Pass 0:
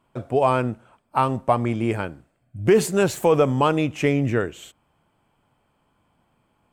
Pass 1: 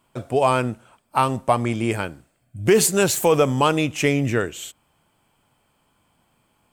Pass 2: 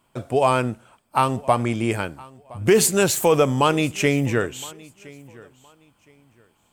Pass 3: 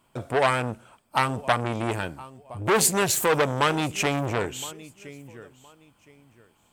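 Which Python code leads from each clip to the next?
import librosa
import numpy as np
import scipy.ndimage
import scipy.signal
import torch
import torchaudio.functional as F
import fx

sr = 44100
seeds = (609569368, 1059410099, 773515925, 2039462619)

y1 = fx.high_shelf(x, sr, hz=3100.0, db=12.0)
y2 = fx.echo_feedback(y1, sr, ms=1016, feedback_pct=24, wet_db=-23)
y3 = fx.transformer_sat(y2, sr, knee_hz=1800.0)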